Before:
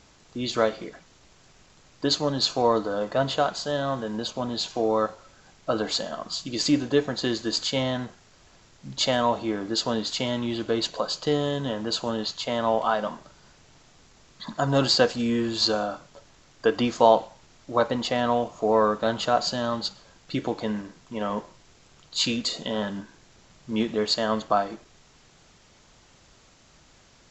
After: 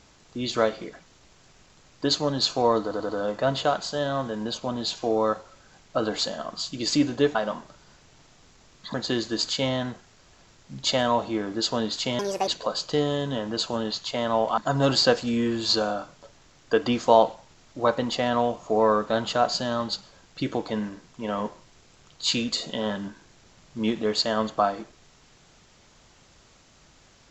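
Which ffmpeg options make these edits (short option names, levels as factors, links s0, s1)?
-filter_complex "[0:a]asplit=9[s0][s1][s2][s3][s4][s5][s6][s7][s8];[s0]atrim=end=2.912[s9];[s1]atrim=start=2.818:end=2.912[s10];[s2]atrim=start=2.818:end=2.912[s11];[s3]atrim=start=2.818:end=7.082[s12];[s4]atrim=start=12.908:end=14.502[s13];[s5]atrim=start=7.078:end=10.334[s14];[s6]atrim=start=10.33:end=10.81,asetpts=PTS-STARTPTS,asetrate=74088,aresample=44100[s15];[s7]atrim=start=10.806:end=12.912[s16];[s8]atrim=start=14.498[s17];[s9][s10]acrossfade=d=0.004:c1=hsin:c2=hsin[s18];[s18][s11]acrossfade=d=0.004:c1=hsin:c2=hsin[s19];[s19][s12]acrossfade=d=0.004:c1=hsin:c2=hsin[s20];[s20][s13]acrossfade=d=0.004:c1=hsin:c2=hsin[s21];[s21][s14]acrossfade=d=0.004:c1=hsin:c2=hsin[s22];[s22][s15]acrossfade=d=0.004:c1=hsin:c2=hsin[s23];[s23][s16]acrossfade=d=0.004:c1=hsin:c2=hsin[s24];[s24][s17]acrossfade=d=0.004:c1=hsin:c2=hsin"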